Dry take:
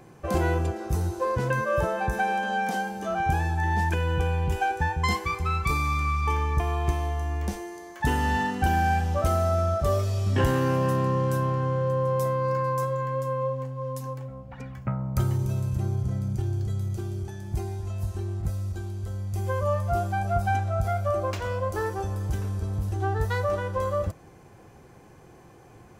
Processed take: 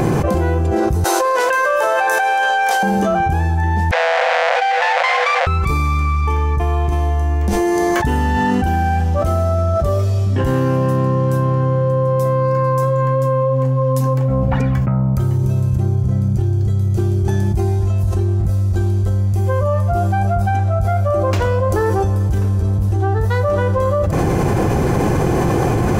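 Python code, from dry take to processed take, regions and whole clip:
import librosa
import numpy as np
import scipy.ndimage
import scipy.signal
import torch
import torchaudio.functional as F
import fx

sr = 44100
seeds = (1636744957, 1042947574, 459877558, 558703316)

y = fx.chain(x, sr, fx.highpass(hz=450.0, slope=24),
    fx.tilt_shelf(db=-6.5, hz=630.0),
    fx.over_compress(threshold_db=-30.0, ratio=-1.0), at=(1.04, 2.83))
y = fx.chain(y, sr, fx.halfwave_hold(),
    fx.cheby_ripple_highpass(hz=500.0, ripple_db=9),
    fx.air_absorb(metres=140.0), at=(3.91, 5.47))
y = fx.tilt_shelf(y, sr, db=3.5, hz=820.0)
y = fx.env_flatten(y, sr, amount_pct=100)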